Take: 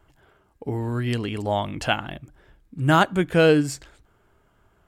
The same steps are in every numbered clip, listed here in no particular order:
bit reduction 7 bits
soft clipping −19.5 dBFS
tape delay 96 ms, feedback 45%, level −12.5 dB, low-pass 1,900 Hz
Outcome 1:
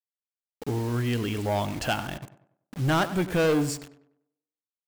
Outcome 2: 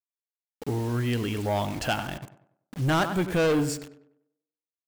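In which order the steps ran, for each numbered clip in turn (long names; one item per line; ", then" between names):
soft clipping, then bit reduction, then tape delay
bit reduction, then tape delay, then soft clipping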